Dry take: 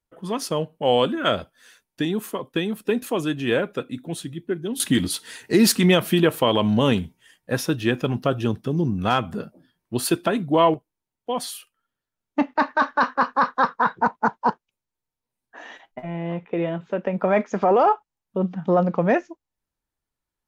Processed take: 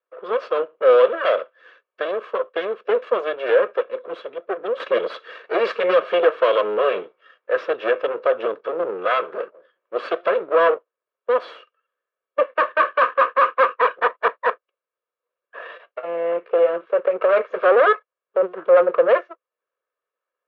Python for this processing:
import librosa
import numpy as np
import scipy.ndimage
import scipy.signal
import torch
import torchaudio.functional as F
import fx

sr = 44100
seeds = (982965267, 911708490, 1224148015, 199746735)

y = fx.lower_of_two(x, sr, delay_ms=1.8)
y = 10.0 ** (-18.0 / 20.0) * np.tanh(y / 10.0 ** (-18.0 / 20.0))
y = fx.cabinet(y, sr, low_hz=370.0, low_slope=24, high_hz=2700.0, hz=(510.0, 820.0, 1300.0, 2100.0), db=(8, -6, 9, -4))
y = y * librosa.db_to_amplitude(5.5)